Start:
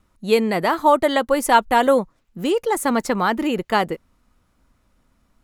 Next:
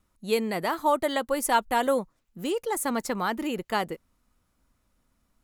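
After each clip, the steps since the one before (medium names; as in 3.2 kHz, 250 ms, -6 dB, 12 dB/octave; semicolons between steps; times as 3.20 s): treble shelf 6 kHz +8 dB; trim -8.5 dB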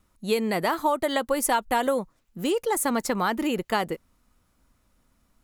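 compression, threshold -24 dBFS, peak gain reduction 7.5 dB; trim +4.5 dB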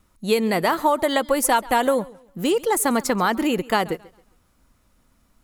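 modulated delay 135 ms, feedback 30%, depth 111 cents, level -21.5 dB; trim +4.5 dB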